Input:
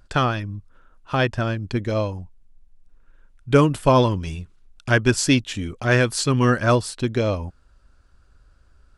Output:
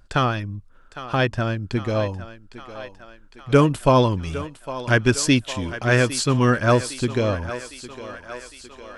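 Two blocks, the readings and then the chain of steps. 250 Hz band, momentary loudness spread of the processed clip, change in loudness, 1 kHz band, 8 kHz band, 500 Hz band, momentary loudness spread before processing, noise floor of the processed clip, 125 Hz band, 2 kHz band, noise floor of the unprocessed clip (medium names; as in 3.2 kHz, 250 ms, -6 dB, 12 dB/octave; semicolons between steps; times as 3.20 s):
0.0 dB, 20 LU, 0.0 dB, +0.5 dB, +0.5 dB, +0.5 dB, 15 LU, -49 dBFS, 0.0 dB, +0.5 dB, -57 dBFS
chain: thinning echo 807 ms, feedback 67%, high-pass 320 Hz, level -13 dB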